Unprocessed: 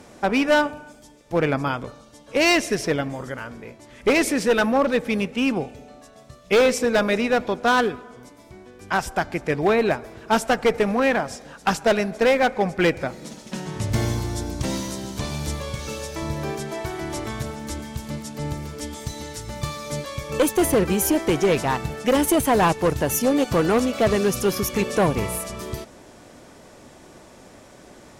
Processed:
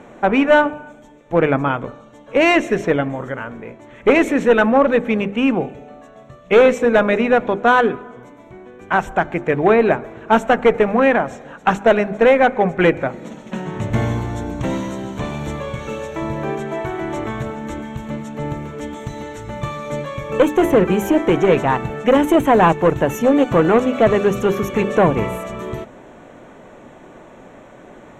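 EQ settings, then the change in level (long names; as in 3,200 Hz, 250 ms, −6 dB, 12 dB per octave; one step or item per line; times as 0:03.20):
moving average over 9 samples
parametric band 72 Hz −10 dB 0.75 octaves
mains-hum notches 50/100/150/200/250/300/350/400 Hz
+6.5 dB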